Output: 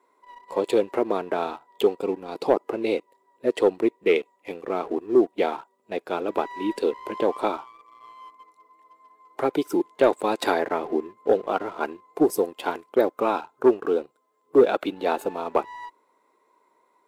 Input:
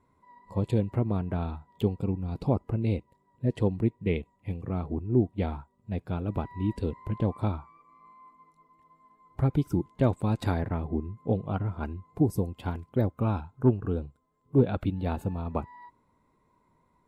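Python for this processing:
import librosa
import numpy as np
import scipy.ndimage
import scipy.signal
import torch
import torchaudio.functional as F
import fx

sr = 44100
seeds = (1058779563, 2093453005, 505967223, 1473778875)

y = scipy.signal.sosfilt(scipy.signal.cheby1(3, 1.0, 380.0, 'highpass', fs=sr, output='sos'), x)
y = fx.leveller(y, sr, passes=1)
y = F.gain(torch.from_numpy(y), 8.5).numpy()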